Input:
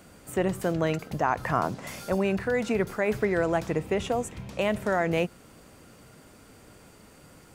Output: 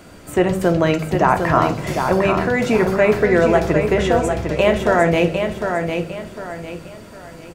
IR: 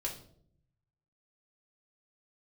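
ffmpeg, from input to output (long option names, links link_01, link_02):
-filter_complex "[0:a]aecho=1:1:753|1506|2259|3012:0.501|0.175|0.0614|0.0215,asplit=2[link_01][link_02];[1:a]atrim=start_sample=2205,lowpass=7300[link_03];[link_02][link_03]afir=irnorm=-1:irlink=0,volume=-1.5dB[link_04];[link_01][link_04]amix=inputs=2:normalize=0,volume=5dB"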